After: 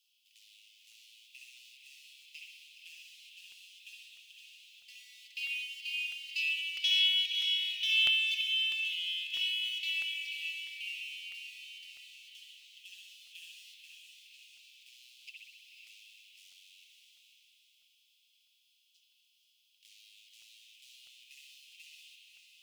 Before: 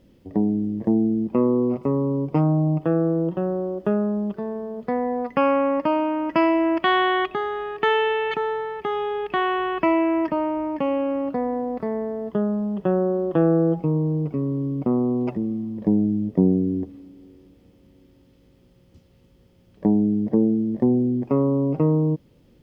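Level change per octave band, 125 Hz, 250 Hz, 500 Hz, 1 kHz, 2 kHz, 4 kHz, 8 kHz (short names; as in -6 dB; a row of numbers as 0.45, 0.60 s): under -40 dB, under -40 dB, under -40 dB, under -40 dB, -5.0 dB, +7.5 dB, n/a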